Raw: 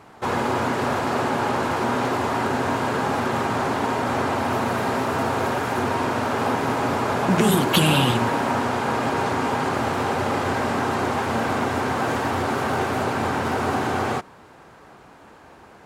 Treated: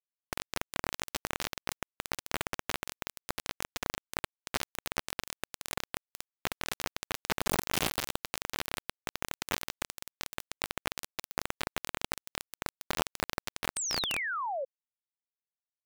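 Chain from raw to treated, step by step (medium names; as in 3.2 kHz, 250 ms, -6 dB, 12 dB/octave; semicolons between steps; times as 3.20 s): hum notches 50/100 Hz; compression 2.5:1, threshold -42 dBFS, peak gain reduction 18.5 dB; hard clipper -26 dBFS, distortion -41 dB; on a send: band-passed feedback delay 93 ms, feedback 64%, band-pass 320 Hz, level -3.5 dB; on the sum: chorus 1.1 Hz, delay 19.5 ms, depth 6.5 ms; bit crusher 5-bit; painted sound fall, 13.76–14.65 s, 510–8800 Hz -42 dBFS; buffer glitch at 1.20/11.11 s, samples 512, times 2; trim +8.5 dB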